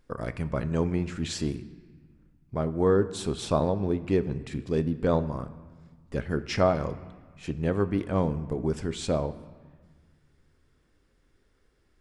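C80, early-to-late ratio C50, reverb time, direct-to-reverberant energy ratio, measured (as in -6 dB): 16.5 dB, 15.0 dB, 1.5 s, 12.0 dB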